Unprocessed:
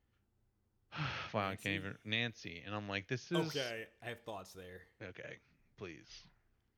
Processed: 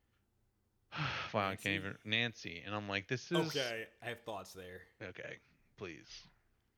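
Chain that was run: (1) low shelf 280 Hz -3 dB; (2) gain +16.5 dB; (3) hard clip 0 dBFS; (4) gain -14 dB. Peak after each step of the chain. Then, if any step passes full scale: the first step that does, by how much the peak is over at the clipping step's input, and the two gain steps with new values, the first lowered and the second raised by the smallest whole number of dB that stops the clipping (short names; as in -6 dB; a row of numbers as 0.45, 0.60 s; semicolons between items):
-21.0, -4.5, -4.5, -18.5 dBFS; no overload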